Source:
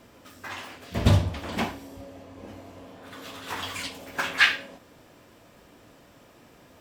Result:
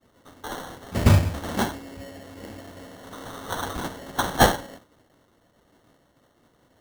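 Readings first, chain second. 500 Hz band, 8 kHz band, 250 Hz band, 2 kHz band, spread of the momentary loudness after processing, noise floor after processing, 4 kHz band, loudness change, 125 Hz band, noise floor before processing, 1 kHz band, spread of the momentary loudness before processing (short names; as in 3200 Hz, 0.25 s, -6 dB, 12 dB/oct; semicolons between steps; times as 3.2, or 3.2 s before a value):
+7.0 dB, +7.5 dB, +4.5 dB, -4.5 dB, 22 LU, -64 dBFS, -1.5 dB, +2.0 dB, +3.5 dB, -55 dBFS, +8.0 dB, 24 LU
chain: expander -45 dBFS; sample-and-hold 18×; gain +3 dB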